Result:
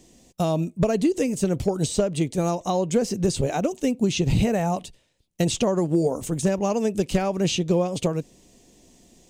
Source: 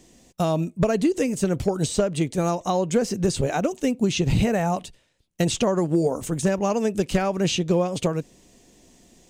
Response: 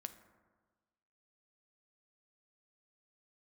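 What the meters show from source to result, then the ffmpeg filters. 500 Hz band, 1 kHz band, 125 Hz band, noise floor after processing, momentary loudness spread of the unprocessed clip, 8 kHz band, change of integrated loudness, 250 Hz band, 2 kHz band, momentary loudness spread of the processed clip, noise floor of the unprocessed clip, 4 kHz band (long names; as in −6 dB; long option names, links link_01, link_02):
−0.5 dB, −1.5 dB, 0.0 dB, −60 dBFS, 4 LU, 0.0 dB, −0.5 dB, 0.0 dB, −3.0 dB, 4 LU, −60 dBFS, −0.5 dB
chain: -af "equalizer=frequency=1500:width=1.3:gain=-5"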